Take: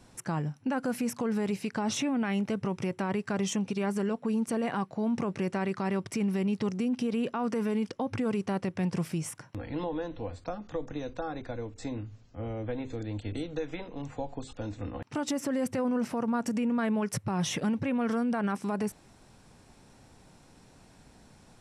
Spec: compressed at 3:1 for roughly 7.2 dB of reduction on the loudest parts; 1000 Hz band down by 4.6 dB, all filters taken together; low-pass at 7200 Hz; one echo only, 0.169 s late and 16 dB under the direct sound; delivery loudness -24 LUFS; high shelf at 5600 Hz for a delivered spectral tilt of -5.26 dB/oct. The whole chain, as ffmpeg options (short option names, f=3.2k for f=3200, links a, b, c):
-af "lowpass=7.2k,equalizer=f=1k:t=o:g=-6.5,highshelf=f=5.6k:g=8.5,acompressor=threshold=-36dB:ratio=3,aecho=1:1:169:0.158,volume=14.5dB"